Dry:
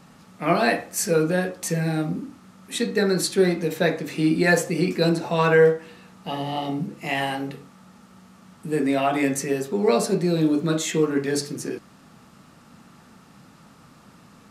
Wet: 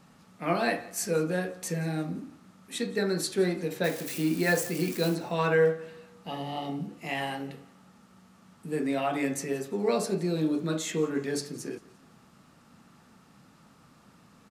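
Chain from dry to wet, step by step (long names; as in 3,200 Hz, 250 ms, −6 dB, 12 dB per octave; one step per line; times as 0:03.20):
0:03.84–0:05.15: spike at every zero crossing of −22 dBFS
repeating echo 174 ms, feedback 40%, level −21.5 dB
level −7 dB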